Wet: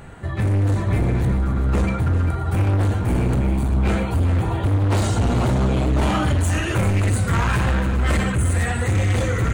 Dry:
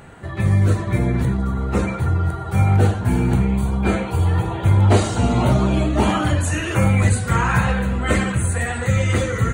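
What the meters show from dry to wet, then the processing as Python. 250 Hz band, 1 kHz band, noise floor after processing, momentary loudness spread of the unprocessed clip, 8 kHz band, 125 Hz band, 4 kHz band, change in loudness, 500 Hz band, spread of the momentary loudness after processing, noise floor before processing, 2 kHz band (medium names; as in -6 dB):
-2.5 dB, -3.0 dB, -25 dBFS, 5 LU, -2.5 dB, -1.0 dB, -1.0 dB, -1.5 dB, -2.5 dB, 2 LU, -28 dBFS, -2.5 dB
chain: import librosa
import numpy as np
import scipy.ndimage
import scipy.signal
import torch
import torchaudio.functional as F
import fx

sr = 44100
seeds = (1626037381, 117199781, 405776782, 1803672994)

y = fx.low_shelf(x, sr, hz=83.0, db=9.5)
y = np.clip(10.0 ** (16.5 / 20.0) * y, -1.0, 1.0) / 10.0 ** (16.5 / 20.0)
y = y + 10.0 ** (-11.5 / 20.0) * np.pad(y, (int(396 * sr / 1000.0), 0))[:len(y)]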